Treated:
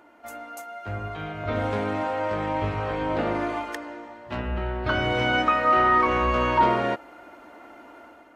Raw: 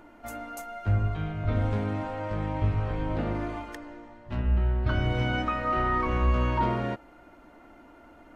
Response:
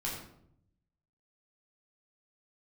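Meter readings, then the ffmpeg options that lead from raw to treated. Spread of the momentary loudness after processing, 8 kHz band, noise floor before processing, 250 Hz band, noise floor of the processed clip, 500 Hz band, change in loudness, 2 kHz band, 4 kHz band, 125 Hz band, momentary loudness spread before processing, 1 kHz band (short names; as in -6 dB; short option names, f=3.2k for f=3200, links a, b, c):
18 LU, n/a, -53 dBFS, +2.5 dB, -50 dBFS, +7.0 dB, +4.0 dB, +8.0 dB, +8.0 dB, -5.5 dB, 13 LU, +8.0 dB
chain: -af "highpass=54,dynaudnorm=f=800:g=3:m=8.5dB,bass=f=250:g=-13,treble=f=4k:g=-1"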